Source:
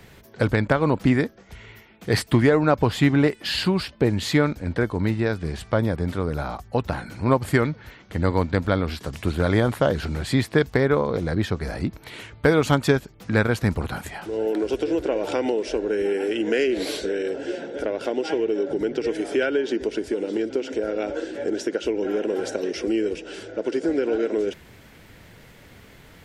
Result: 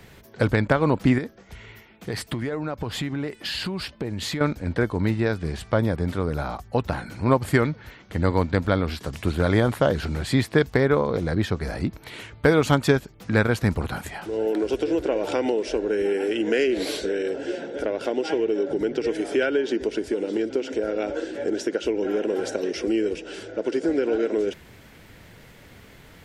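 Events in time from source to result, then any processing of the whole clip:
1.18–4.41 compressor, threshold -25 dBFS

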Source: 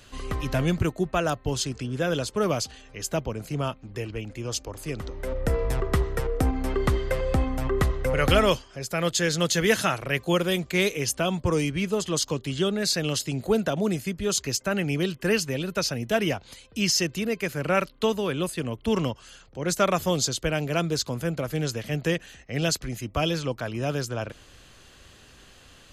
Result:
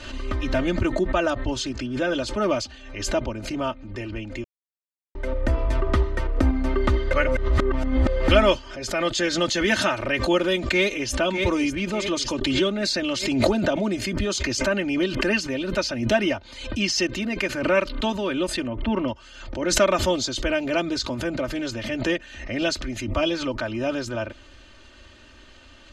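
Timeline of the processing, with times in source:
4.44–5.15 mute
7.13–8.28 reverse
10.67–11.19 echo throw 0.6 s, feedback 50%, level -8 dB
12.41–15.26 backwards sustainer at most 28 dB/s
18.67–19.08 LPF 2200 Hz
whole clip: LPF 4700 Hz 12 dB/oct; comb 3.3 ms, depth 91%; backwards sustainer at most 69 dB/s

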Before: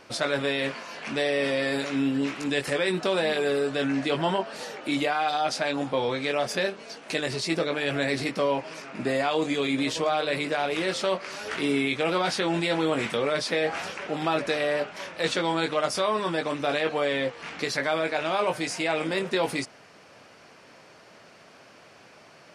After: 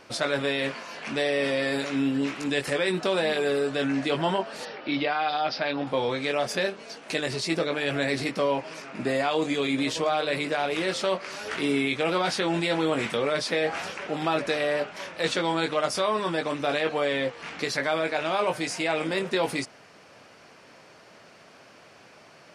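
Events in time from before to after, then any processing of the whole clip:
4.65–5.87 elliptic low-pass 5200 Hz

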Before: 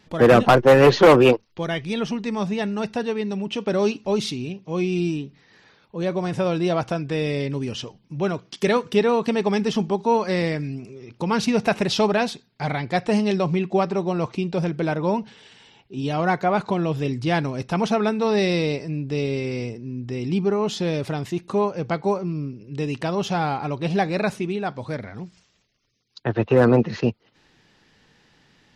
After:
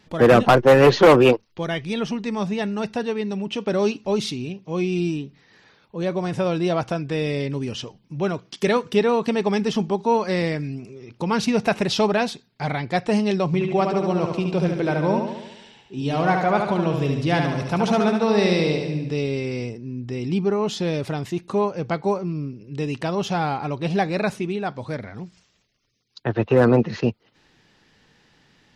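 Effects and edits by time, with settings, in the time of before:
13.46–19.12 feedback echo 72 ms, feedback 58%, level -5 dB

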